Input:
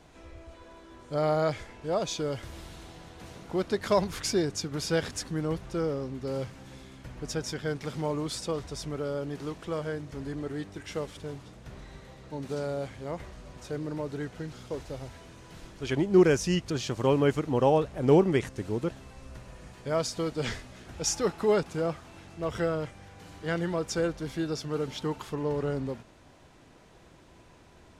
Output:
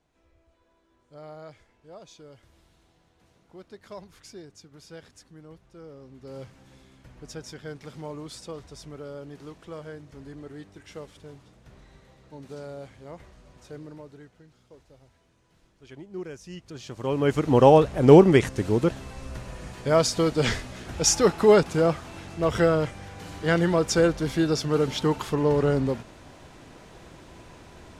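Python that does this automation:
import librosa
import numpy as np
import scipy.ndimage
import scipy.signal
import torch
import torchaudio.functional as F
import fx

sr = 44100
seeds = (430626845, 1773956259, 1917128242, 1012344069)

y = fx.gain(x, sr, db=fx.line((5.75, -17.0), (6.42, -6.5), (13.8, -6.5), (14.43, -16.5), (16.38, -16.5), (17.09, -3.5), (17.5, 8.0)))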